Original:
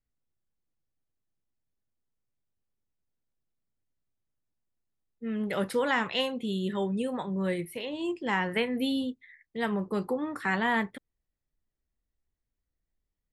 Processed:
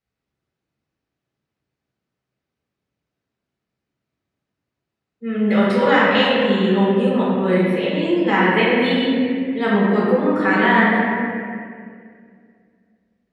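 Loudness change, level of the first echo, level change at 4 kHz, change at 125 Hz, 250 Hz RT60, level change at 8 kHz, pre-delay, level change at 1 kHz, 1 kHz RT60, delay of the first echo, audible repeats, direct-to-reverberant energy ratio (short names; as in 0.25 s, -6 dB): +13.0 dB, none, +11.0 dB, +13.5 dB, 2.6 s, n/a, 4 ms, +13.5 dB, 1.9 s, none, none, -7.5 dB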